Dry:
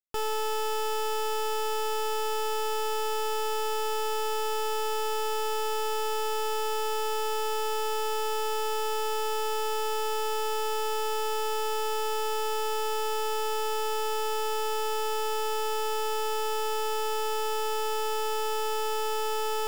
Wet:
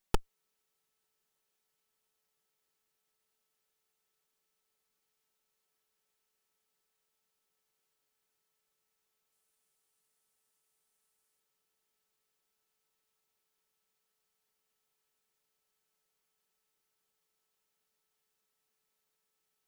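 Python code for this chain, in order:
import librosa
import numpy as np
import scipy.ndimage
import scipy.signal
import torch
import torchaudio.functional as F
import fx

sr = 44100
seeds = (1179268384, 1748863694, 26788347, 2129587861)

y = fx.lower_of_two(x, sr, delay_ms=5.3)
y = fx.peak_eq(y, sr, hz=9300.0, db=8.0, octaves=0.66, at=(9.32, 11.4))
y = y * 10.0 ** (13.0 / 20.0)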